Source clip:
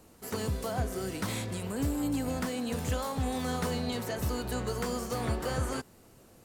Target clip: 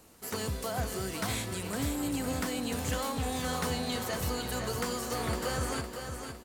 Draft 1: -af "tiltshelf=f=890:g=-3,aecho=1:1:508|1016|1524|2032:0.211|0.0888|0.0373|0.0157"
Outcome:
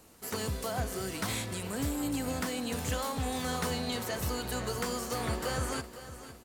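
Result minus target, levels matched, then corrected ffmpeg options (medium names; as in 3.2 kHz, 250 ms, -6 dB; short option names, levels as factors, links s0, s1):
echo-to-direct -6.5 dB
-af "tiltshelf=f=890:g=-3,aecho=1:1:508|1016|1524|2032|2540:0.447|0.188|0.0788|0.0331|0.0139"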